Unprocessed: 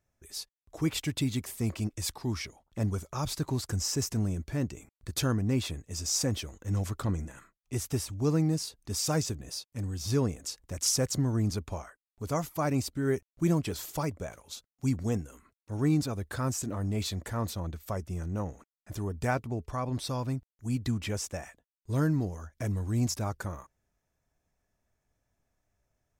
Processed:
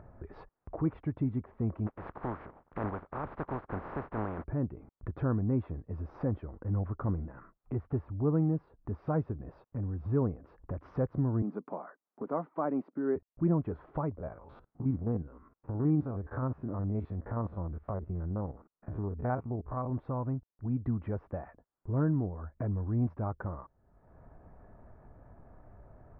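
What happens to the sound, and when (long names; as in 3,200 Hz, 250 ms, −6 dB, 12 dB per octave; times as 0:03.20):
0:01.86–0:04.43: compressing power law on the bin magnitudes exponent 0.27
0:11.42–0:13.16: Butterworth high-pass 190 Hz
0:14.18–0:19.90: spectrum averaged block by block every 50 ms
whole clip: inverse Chebyshev low-pass filter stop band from 7,100 Hz, stop band 80 dB; upward compression, threshold −30 dBFS; level −1.5 dB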